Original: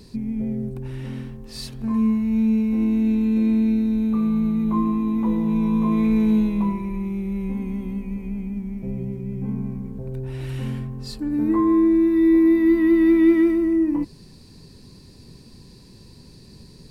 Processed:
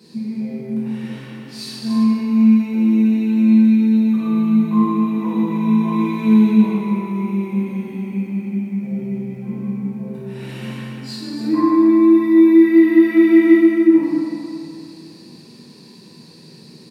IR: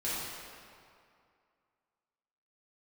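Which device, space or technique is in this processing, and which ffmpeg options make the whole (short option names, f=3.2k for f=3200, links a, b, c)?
stadium PA: -filter_complex "[0:a]highpass=f=160:w=0.5412,highpass=f=160:w=1.3066,equalizer=f=3.1k:t=o:w=1.9:g=3,aecho=1:1:169.1|274.1:0.251|0.355[a];[1:a]atrim=start_sample=2205[b];[a][b]afir=irnorm=-1:irlink=0,volume=-2dB"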